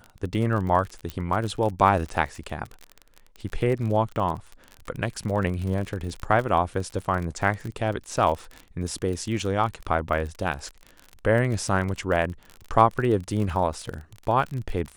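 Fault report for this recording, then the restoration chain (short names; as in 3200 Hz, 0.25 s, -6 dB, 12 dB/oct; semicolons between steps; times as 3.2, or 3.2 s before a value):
crackle 39/s -30 dBFS
1.1 pop -17 dBFS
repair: de-click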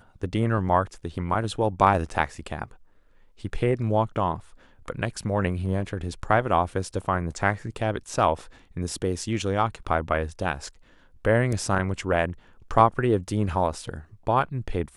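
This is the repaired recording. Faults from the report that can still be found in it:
none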